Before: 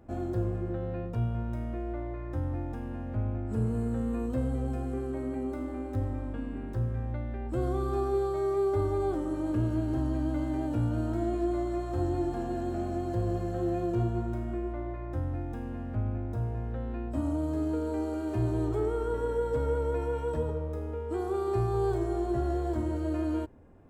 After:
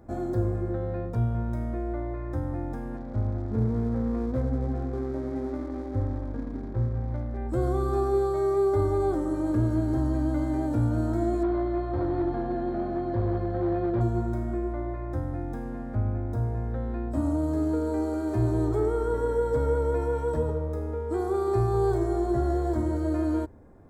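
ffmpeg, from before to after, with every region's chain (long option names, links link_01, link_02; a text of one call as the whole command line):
ffmpeg -i in.wav -filter_complex "[0:a]asettb=1/sr,asplit=3[link_01][link_02][link_03];[link_01]atrim=end=2.974[link_04];[link_02]atrim=start=2.97:end=7.37,asetpts=PTS-STARTPTS,afade=type=in:duration=0.004:curve=qsin,afade=type=out:start_time=4.396:duration=0.004:curve=qsin,adynamicsmooth=sensitivity=4.5:basefreq=720,aeval=exprs='sgn(val(0))*max(abs(val(0))-0.00251,0)':channel_layout=same[link_05];[link_03]atrim=start=7.366[link_06];[link_04][link_05]acrossfade=duration=0.004:curve1=hsin:curve2=qsin[link_07];[link_07][link_06]acrossfade=duration=0.004:curve1=qsin:curve2=hsin,asettb=1/sr,asplit=3[link_08][link_09][link_10];[link_08]atrim=end=11.434[link_11];[link_09]atrim=start=11.43:end=14.01,asetpts=PTS-STARTPTS,afade=type=in:duration=0.004:curve=qsin,afade=type=out:start_time=2.576:duration=0.004:curve=qsin,volume=25dB,asoftclip=hard,volume=-25dB,lowpass=frequency=3800:width=0.5412,lowpass=frequency=3800:width=1.3066[link_12];[link_10]atrim=start=14.006[link_13];[link_11][link_12]acrossfade=duration=0.004:curve1=hsin:curve2=qsin[link_14];[link_14][link_13]acrossfade=duration=0.004:curve1=qsin:curve2=hsin,equalizer=frequency=2800:width=4.1:gain=-14.5,bandreject=frequency=86.45:width_type=h:width=4,bandreject=frequency=172.9:width_type=h:width=4,bandreject=frequency=259.35:width_type=h:width=4,volume=4dB" out.wav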